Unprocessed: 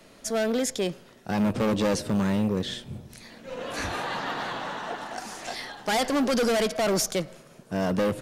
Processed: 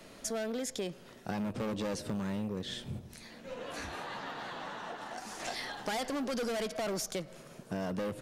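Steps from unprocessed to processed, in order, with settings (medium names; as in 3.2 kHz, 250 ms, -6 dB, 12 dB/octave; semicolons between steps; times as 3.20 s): compression 4:1, threshold -35 dBFS, peak gain reduction 12 dB; 2.99–5.40 s: flange 1.7 Hz, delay 8.6 ms, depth 6.2 ms, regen -47%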